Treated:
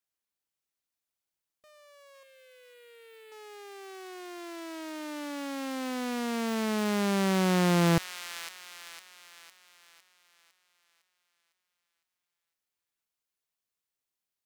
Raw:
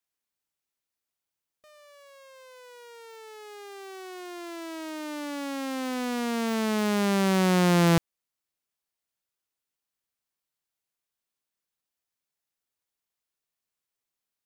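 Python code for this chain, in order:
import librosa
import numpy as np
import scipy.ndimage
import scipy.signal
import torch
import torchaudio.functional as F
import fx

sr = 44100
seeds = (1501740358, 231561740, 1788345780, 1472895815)

y = fx.fixed_phaser(x, sr, hz=2500.0, stages=4, at=(2.23, 3.32))
y = fx.echo_wet_highpass(y, sr, ms=506, feedback_pct=49, hz=1900.0, wet_db=-5.5)
y = y * librosa.db_to_amplitude(-3.0)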